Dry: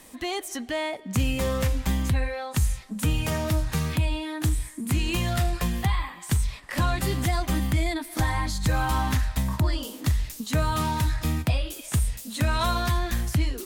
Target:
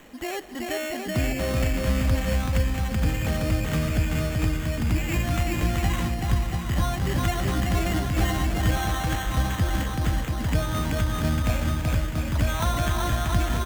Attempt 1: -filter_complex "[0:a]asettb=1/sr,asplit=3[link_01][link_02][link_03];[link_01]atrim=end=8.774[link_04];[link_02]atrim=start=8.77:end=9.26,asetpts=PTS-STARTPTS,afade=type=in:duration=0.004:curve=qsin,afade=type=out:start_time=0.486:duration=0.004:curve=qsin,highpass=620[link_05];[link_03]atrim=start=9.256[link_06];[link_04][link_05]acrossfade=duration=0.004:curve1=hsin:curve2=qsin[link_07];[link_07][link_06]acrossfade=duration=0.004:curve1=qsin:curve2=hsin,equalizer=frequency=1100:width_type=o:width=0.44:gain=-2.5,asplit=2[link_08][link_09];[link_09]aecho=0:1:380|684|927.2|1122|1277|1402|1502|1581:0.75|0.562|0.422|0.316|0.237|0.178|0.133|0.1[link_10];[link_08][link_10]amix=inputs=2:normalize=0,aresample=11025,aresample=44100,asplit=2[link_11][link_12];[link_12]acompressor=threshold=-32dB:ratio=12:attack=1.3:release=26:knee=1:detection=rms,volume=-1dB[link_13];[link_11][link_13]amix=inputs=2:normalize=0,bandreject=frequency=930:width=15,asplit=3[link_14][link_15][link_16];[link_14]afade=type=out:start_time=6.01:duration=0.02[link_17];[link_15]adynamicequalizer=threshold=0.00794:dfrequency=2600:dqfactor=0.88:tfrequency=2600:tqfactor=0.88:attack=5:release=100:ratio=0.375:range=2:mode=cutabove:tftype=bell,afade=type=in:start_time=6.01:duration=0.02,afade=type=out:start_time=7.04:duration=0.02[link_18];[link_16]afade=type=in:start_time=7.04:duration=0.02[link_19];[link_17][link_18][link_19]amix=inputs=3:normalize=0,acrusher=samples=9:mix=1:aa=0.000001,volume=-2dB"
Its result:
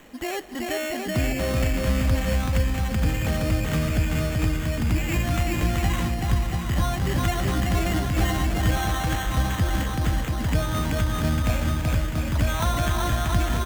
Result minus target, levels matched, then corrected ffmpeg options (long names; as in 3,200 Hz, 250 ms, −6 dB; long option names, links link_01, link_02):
downward compressor: peak gain reduction −9 dB
-filter_complex "[0:a]asettb=1/sr,asplit=3[link_01][link_02][link_03];[link_01]atrim=end=8.774[link_04];[link_02]atrim=start=8.77:end=9.26,asetpts=PTS-STARTPTS,afade=type=in:duration=0.004:curve=qsin,afade=type=out:start_time=0.486:duration=0.004:curve=qsin,highpass=620[link_05];[link_03]atrim=start=9.256[link_06];[link_04][link_05]acrossfade=duration=0.004:curve1=hsin:curve2=qsin[link_07];[link_07][link_06]acrossfade=duration=0.004:curve1=qsin:curve2=hsin,equalizer=frequency=1100:width_type=o:width=0.44:gain=-2.5,asplit=2[link_08][link_09];[link_09]aecho=0:1:380|684|927.2|1122|1277|1402|1502|1581:0.75|0.562|0.422|0.316|0.237|0.178|0.133|0.1[link_10];[link_08][link_10]amix=inputs=2:normalize=0,aresample=11025,aresample=44100,asplit=2[link_11][link_12];[link_12]acompressor=threshold=-42dB:ratio=12:attack=1.3:release=26:knee=1:detection=rms,volume=-1dB[link_13];[link_11][link_13]amix=inputs=2:normalize=0,bandreject=frequency=930:width=15,asplit=3[link_14][link_15][link_16];[link_14]afade=type=out:start_time=6.01:duration=0.02[link_17];[link_15]adynamicequalizer=threshold=0.00794:dfrequency=2600:dqfactor=0.88:tfrequency=2600:tqfactor=0.88:attack=5:release=100:ratio=0.375:range=2:mode=cutabove:tftype=bell,afade=type=in:start_time=6.01:duration=0.02,afade=type=out:start_time=7.04:duration=0.02[link_18];[link_16]afade=type=in:start_time=7.04:duration=0.02[link_19];[link_17][link_18][link_19]amix=inputs=3:normalize=0,acrusher=samples=9:mix=1:aa=0.000001,volume=-2dB"